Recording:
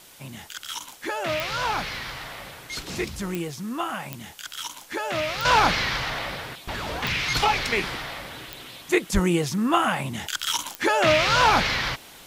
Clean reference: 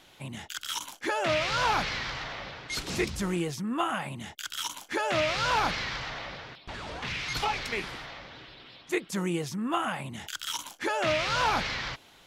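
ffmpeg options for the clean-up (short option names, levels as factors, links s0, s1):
-filter_complex "[0:a]adeclick=t=4,asplit=3[s0][s1][s2];[s0]afade=t=out:st=9.13:d=0.02[s3];[s1]highpass=f=140:w=0.5412,highpass=f=140:w=1.3066,afade=t=in:st=9.13:d=0.02,afade=t=out:st=9.25:d=0.02[s4];[s2]afade=t=in:st=9.25:d=0.02[s5];[s3][s4][s5]amix=inputs=3:normalize=0,afwtdn=0.0035,asetnsamples=n=441:p=0,asendcmd='5.45 volume volume -8dB',volume=1"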